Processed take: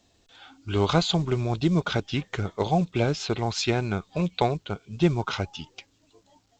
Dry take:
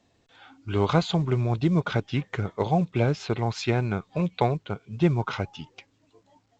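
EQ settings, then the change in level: ten-band graphic EQ 125 Hz -10 dB, 250 Hz -5 dB, 500 Hz -6 dB, 1 kHz -6 dB, 2 kHz -7 dB; +8.0 dB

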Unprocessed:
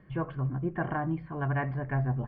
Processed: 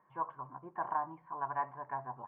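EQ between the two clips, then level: band-pass filter 960 Hz, Q 8.1; distance through air 92 m; +9.0 dB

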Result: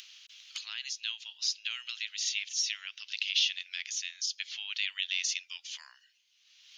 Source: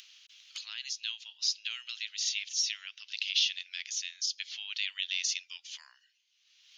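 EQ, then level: dynamic bell 4.8 kHz, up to -5 dB, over -44 dBFS, Q 1; +3.5 dB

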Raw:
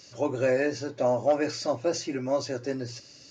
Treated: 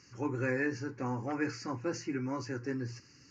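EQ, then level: distance through air 130 m; treble shelf 6.1 kHz +6 dB; static phaser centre 1.5 kHz, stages 4; 0.0 dB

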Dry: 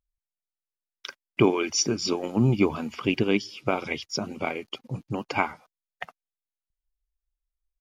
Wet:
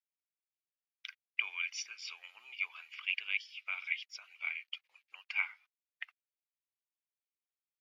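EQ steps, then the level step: ladder high-pass 2 kHz, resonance 50%; treble shelf 3.1 kHz -7.5 dB; peaking EQ 7.7 kHz -11 dB 1.5 oct; +5.0 dB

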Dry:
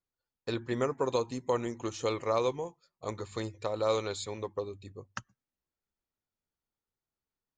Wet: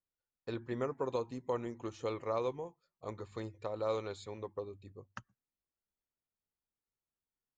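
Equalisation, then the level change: treble shelf 3.8 kHz -12 dB; -5.5 dB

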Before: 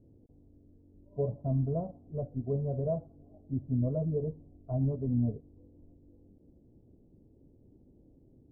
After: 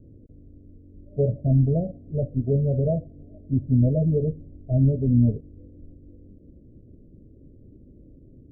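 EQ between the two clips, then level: elliptic low-pass 610 Hz, stop band 50 dB; bass shelf 110 Hz +7 dB; +8.5 dB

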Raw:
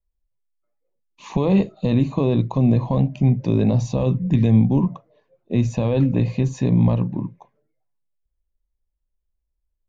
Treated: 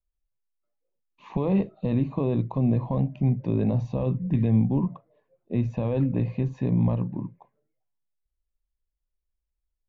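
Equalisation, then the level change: low-pass 2.4 kHz 12 dB/octave; -6.0 dB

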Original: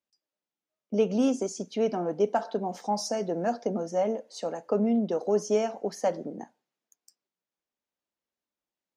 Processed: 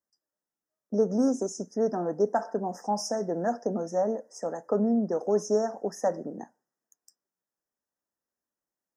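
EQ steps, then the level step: brick-wall FIR band-stop 2–4.9 kHz; 0.0 dB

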